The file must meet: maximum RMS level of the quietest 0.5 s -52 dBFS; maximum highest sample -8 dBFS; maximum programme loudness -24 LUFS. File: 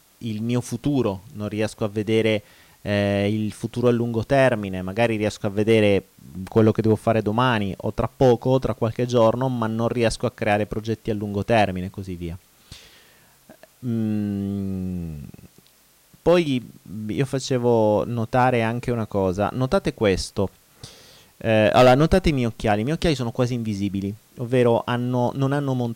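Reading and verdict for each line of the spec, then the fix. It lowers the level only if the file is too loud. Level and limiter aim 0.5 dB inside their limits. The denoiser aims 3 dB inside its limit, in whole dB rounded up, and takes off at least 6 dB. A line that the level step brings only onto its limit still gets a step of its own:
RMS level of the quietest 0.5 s -57 dBFS: OK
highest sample -7.0 dBFS: fail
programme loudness -22.0 LUFS: fail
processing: gain -2.5 dB

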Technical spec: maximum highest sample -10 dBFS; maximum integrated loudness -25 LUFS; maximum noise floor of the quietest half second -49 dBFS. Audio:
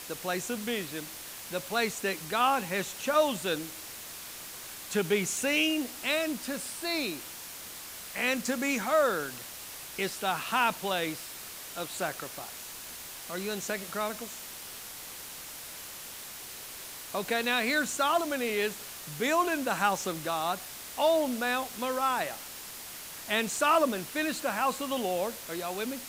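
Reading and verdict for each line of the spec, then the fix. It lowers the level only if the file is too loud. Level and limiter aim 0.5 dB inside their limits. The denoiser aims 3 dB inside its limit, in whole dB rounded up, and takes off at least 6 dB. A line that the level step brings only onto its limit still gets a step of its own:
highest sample -12.0 dBFS: OK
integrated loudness -31.0 LUFS: OK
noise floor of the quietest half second -43 dBFS: fail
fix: denoiser 9 dB, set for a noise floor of -43 dBFS

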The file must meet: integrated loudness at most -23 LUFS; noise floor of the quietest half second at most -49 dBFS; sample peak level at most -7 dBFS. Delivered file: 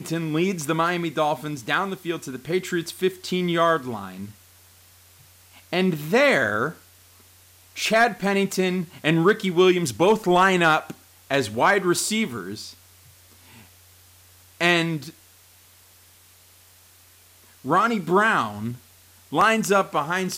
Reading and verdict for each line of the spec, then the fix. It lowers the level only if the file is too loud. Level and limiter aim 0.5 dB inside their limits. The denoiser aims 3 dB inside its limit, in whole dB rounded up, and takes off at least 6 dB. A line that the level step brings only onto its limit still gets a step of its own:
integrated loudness -22.0 LUFS: fail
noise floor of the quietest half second -53 dBFS: OK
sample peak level -8.5 dBFS: OK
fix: gain -1.5 dB

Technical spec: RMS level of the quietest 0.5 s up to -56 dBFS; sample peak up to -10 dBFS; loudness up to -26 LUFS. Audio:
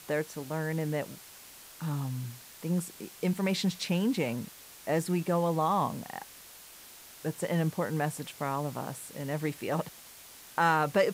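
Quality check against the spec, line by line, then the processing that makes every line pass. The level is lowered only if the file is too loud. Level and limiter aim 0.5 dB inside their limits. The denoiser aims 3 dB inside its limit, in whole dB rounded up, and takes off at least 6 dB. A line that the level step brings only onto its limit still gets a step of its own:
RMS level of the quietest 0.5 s -51 dBFS: fail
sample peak -12.5 dBFS: OK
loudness -32.0 LUFS: OK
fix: denoiser 8 dB, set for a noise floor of -51 dBFS

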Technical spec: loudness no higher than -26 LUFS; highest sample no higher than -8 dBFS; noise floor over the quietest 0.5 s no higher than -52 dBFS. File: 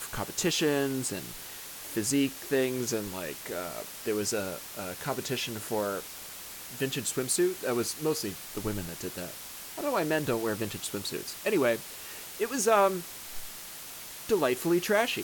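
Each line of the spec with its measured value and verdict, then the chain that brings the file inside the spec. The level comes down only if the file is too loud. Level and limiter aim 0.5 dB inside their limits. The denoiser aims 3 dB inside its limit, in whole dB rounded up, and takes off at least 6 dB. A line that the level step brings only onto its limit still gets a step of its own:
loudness -31.0 LUFS: OK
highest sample -12.0 dBFS: OK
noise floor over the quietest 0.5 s -43 dBFS: fail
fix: denoiser 12 dB, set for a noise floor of -43 dBFS

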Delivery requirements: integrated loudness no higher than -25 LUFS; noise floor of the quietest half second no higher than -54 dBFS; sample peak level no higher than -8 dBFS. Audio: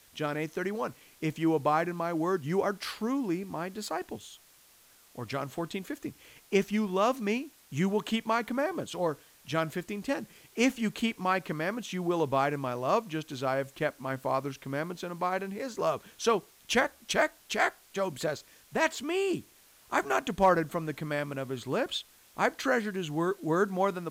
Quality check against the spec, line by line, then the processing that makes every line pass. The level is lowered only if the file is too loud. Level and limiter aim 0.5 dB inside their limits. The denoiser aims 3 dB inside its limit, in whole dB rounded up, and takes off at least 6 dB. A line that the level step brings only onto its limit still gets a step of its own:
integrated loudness -31.0 LUFS: OK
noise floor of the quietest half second -60 dBFS: OK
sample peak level -13.0 dBFS: OK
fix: none

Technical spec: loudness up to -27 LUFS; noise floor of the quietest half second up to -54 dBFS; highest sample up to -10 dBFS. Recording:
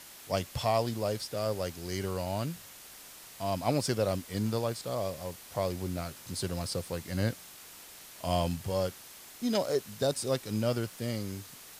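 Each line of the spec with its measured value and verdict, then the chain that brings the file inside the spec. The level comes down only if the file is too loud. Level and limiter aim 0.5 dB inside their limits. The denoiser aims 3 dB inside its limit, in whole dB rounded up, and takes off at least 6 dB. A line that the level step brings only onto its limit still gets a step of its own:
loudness -33.0 LUFS: OK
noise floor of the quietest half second -50 dBFS: fail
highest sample -15.0 dBFS: OK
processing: denoiser 7 dB, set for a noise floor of -50 dBFS

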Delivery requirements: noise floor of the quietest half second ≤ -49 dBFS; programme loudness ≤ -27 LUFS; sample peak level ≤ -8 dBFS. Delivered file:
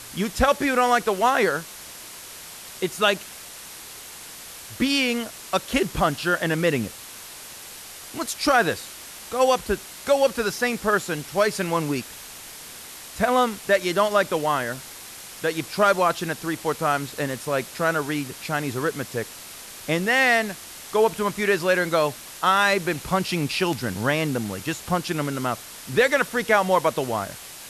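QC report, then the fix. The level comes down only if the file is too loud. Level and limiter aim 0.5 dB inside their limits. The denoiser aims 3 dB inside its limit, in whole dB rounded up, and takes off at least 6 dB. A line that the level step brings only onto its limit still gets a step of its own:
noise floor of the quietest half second -40 dBFS: fail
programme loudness -23.0 LUFS: fail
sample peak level -6.0 dBFS: fail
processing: denoiser 8 dB, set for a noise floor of -40 dBFS; gain -4.5 dB

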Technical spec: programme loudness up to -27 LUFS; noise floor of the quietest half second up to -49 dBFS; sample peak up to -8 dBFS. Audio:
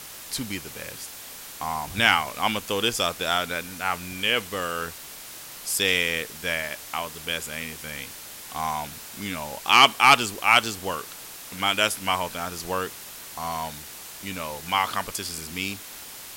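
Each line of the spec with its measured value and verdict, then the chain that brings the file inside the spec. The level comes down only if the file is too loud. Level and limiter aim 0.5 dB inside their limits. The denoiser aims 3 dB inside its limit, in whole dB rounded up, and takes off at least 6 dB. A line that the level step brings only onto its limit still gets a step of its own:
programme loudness -24.5 LUFS: fail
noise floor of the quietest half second -41 dBFS: fail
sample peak -4.0 dBFS: fail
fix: denoiser 8 dB, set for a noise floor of -41 dBFS; gain -3 dB; limiter -8.5 dBFS

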